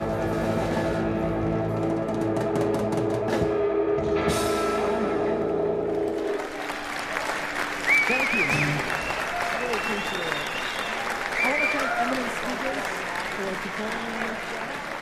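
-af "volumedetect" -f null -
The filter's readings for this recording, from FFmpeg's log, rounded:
mean_volume: -25.9 dB
max_volume: -10.0 dB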